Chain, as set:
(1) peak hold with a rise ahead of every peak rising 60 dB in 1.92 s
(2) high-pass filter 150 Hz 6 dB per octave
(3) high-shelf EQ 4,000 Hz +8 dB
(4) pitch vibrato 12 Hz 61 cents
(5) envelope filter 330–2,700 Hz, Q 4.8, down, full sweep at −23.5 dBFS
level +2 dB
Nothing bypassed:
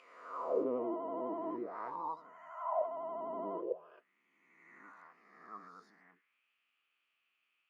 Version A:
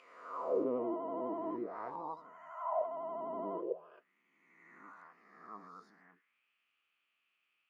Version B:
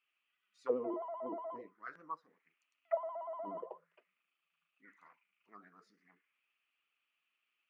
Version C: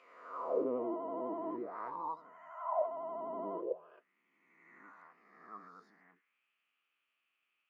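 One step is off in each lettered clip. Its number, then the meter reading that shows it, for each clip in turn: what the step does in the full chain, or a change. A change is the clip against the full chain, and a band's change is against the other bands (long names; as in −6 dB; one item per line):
2, 250 Hz band +1.5 dB
1, 2 kHz band +5.5 dB
3, change in momentary loudness spread −4 LU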